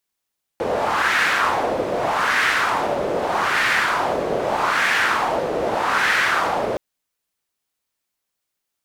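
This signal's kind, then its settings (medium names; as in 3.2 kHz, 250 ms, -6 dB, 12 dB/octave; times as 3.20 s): wind-like swept noise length 6.17 s, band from 500 Hz, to 1.8 kHz, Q 2.5, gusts 5, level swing 4 dB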